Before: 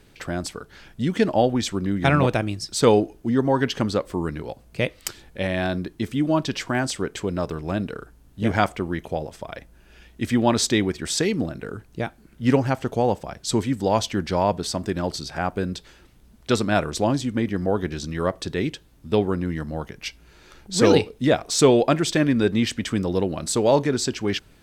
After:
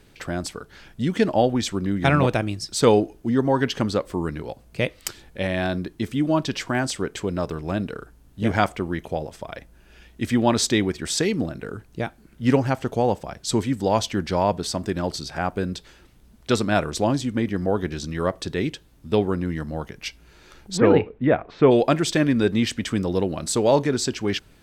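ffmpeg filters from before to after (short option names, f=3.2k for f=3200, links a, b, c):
-filter_complex "[0:a]asplit=3[a][b][c];[a]afade=t=out:st=20.76:d=0.02[d];[b]lowpass=f=2.3k:w=0.5412,lowpass=f=2.3k:w=1.3066,afade=t=in:st=20.76:d=0.02,afade=t=out:st=21.7:d=0.02[e];[c]afade=t=in:st=21.7:d=0.02[f];[d][e][f]amix=inputs=3:normalize=0"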